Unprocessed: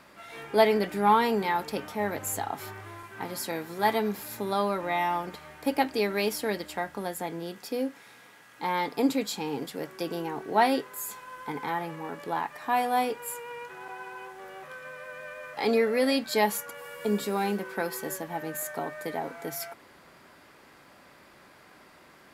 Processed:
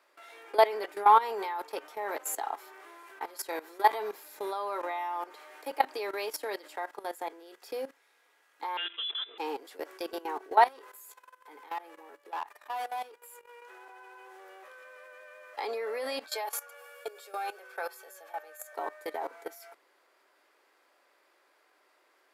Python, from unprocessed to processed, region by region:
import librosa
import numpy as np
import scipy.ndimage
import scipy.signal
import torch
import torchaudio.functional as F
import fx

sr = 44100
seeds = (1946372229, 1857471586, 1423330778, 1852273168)

y = fx.chain(x, sr, fx.comb_fb(f0_hz=210.0, decay_s=0.77, harmonics='all', damping=0.0, mix_pct=70),
    fx.freq_invert(carrier_hz=3700),
    fx.env_flatten(amount_pct=70), at=(8.77, 9.38))
y = fx.chain(y, sr, fx.high_shelf(hz=9000.0, db=5.0),
    fx.level_steps(step_db=10),
    fx.tube_stage(drive_db=31.0, bias=0.35), at=(10.67, 13.62))
y = fx.chain(y, sr, fx.highpass(hz=510.0, slope=24),
    fx.notch_comb(f0_hz=990.0), at=(16.26, 18.73))
y = scipy.signal.sosfilt(scipy.signal.butter(6, 340.0, 'highpass', fs=sr, output='sos'), y)
y = fx.dynamic_eq(y, sr, hz=1000.0, q=1.6, threshold_db=-41.0, ratio=4.0, max_db=7)
y = fx.level_steps(y, sr, step_db=17)